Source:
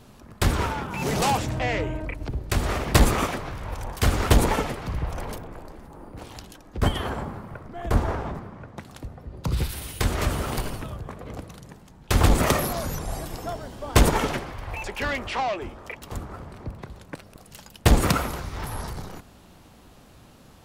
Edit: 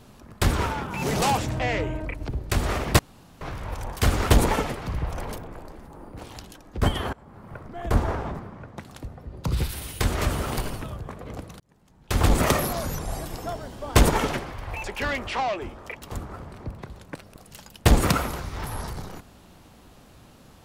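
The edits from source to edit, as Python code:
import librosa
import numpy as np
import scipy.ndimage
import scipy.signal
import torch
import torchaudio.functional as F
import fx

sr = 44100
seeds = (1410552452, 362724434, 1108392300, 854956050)

y = fx.edit(x, sr, fx.room_tone_fill(start_s=2.99, length_s=0.42),
    fx.fade_in_from(start_s=7.13, length_s=0.44, curve='qua', floor_db=-22.0),
    fx.fade_in_span(start_s=11.6, length_s=0.8), tone=tone)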